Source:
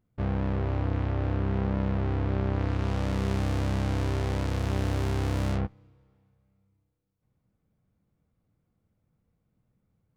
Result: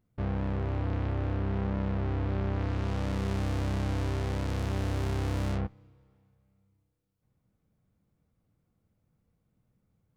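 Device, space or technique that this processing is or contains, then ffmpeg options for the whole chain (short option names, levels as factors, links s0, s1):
clipper into limiter: -af "asoftclip=type=hard:threshold=0.0841,alimiter=level_in=1.12:limit=0.0631:level=0:latency=1:release=11,volume=0.891"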